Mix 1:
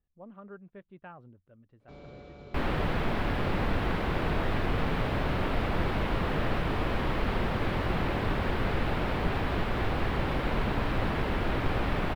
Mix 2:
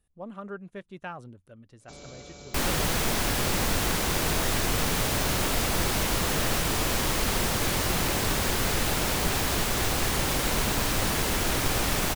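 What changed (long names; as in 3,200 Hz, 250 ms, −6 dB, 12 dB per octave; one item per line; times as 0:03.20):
speech +7.0 dB
master: remove high-frequency loss of the air 460 metres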